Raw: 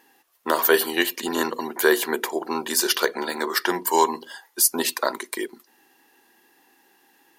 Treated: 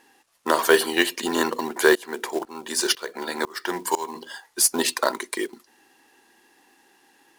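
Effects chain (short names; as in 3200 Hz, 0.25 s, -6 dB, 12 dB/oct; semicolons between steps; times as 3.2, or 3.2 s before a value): 1.95–4.16 tremolo saw up 2 Hz, depth 95%; bit-crush 11-bit; LPF 11000 Hz 24 dB/oct; short-mantissa float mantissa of 2-bit; gain +1.5 dB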